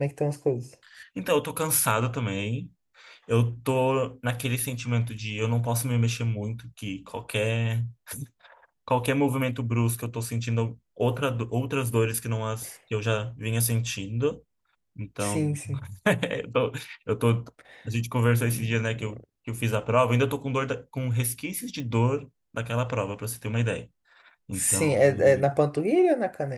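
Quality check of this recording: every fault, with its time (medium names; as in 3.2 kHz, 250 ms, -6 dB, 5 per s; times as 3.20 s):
21.80 s: pop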